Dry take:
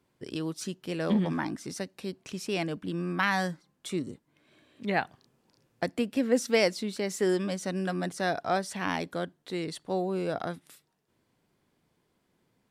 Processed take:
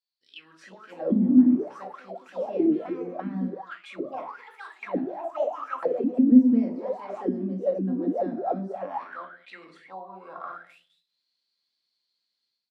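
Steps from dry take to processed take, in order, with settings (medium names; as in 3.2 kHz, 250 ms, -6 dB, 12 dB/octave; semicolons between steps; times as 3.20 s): ever faster or slower copies 463 ms, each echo +5 st, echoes 3, each echo -6 dB; level rider gain up to 12.5 dB; on a send: delay 205 ms -16 dB; on the sum: simulated room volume 460 m³, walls furnished, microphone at 2.2 m; 8.85–10.53 s: compression 12:1, threshold -14 dBFS, peak gain reduction 7.5 dB; auto-wah 250–4400 Hz, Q 13, down, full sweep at -8.5 dBFS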